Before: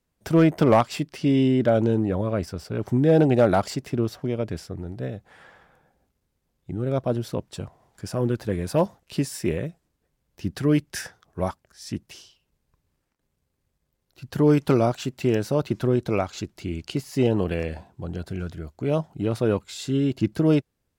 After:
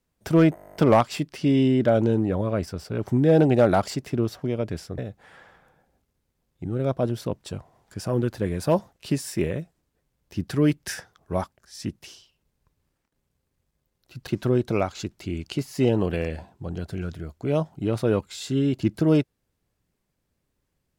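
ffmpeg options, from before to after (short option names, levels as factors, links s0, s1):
-filter_complex "[0:a]asplit=13[s0][s1][s2][s3][s4][s5][s6][s7][s8][s9][s10][s11][s12];[s0]atrim=end=0.572[s13];[s1]atrim=start=0.548:end=0.572[s14];[s2]atrim=start=0.548:end=0.572[s15];[s3]atrim=start=0.548:end=0.572[s16];[s4]atrim=start=0.548:end=0.572[s17];[s5]atrim=start=0.548:end=0.572[s18];[s6]atrim=start=0.548:end=0.572[s19];[s7]atrim=start=0.548:end=0.572[s20];[s8]atrim=start=0.548:end=0.572[s21];[s9]atrim=start=0.548:end=0.572[s22];[s10]atrim=start=0.548:end=4.782[s23];[s11]atrim=start=5.048:end=14.342[s24];[s12]atrim=start=15.648[s25];[s13][s14]acrossfade=d=0.004:c1=hsin:c2=hsin[s26];[s26][s15]acrossfade=d=0.004:c1=hsin:c2=hsin[s27];[s27][s16]acrossfade=d=0.004:c1=hsin:c2=hsin[s28];[s28][s17]acrossfade=d=0.004:c1=hsin:c2=hsin[s29];[s29][s18]acrossfade=d=0.004:c1=hsin:c2=hsin[s30];[s30][s19]acrossfade=d=0.004:c1=hsin:c2=hsin[s31];[s31][s20]acrossfade=d=0.004:c1=hsin:c2=hsin[s32];[s32][s21]acrossfade=d=0.004:c1=hsin:c2=hsin[s33];[s33][s22]acrossfade=d=0.004:c1=hsin:c2=hsin[s34];[s34][s23]acrossfade=d=0.004:c1=hsin:c2=hsin[s35];[s35][s24]acrossfade=d=0.004:c1=hsin:c2=hsin[s36];[s36][s25]acrossfade=d=0.004:c1=hsin:c2=hsin"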